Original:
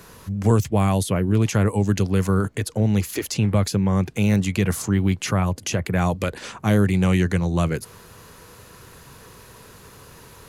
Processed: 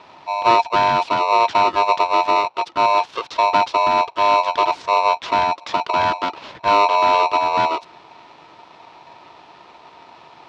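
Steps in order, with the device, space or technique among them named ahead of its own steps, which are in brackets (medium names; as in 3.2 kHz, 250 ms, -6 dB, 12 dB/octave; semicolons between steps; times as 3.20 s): ring modulator pedal into a guitar cabinet (polarity switched at an audio rate 810 Hz; cabinet simulation 82–4300 Hz, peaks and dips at 190 Hz -6 dB, 950 Hz +7 dB, 1.9 kHz -5 dB)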